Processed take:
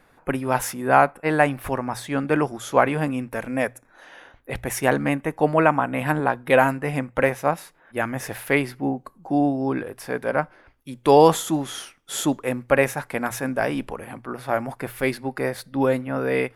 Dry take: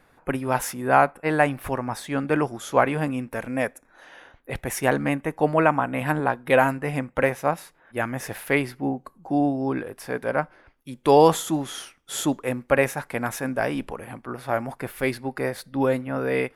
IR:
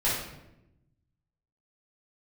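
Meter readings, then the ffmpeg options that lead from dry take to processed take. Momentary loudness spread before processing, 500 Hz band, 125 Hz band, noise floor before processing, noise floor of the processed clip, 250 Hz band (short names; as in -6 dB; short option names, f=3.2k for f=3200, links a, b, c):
13 LU, +1.5 dB, +1.0 dB, -61 dBFS, -58 dBFS, +1.5 dB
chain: -af "bandreject=f=60:t=h:w=6,bandreject=f=120:t=h:w=6,volume=1.5dB"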